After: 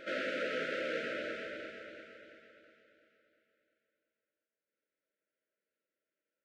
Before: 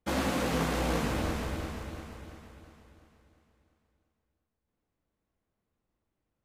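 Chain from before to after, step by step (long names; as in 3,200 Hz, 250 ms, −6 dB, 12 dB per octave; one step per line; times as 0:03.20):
flat-topped band-pass 1,200 Hz, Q 0.51
echo ahead of the sound 88 ms −14.5 dB
brick-wall band-stop 650–1,300 Hz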